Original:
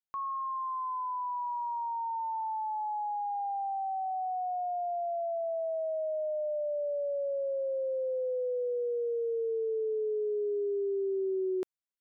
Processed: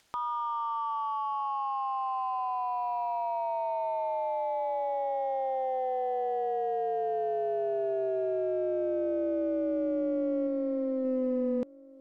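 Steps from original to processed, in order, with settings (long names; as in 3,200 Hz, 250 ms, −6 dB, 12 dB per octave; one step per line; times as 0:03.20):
0:10.47–0:11.05: low-shelf EQ 380 Hz −3.5 dB
ring modulation 130 Hz
in parallel at −10 dB: hard clipping −38.5 dBFS, distortion −9 dB
on the sum: upward compression, threshold −43 dBFS
high-frequency loss of the air 53 metres
on a send: feedback echo with a low-pass in the loop 1,184 ms, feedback 23%, low-pass 1,000 Hz, level −21 dB
on the sum: level +4 dB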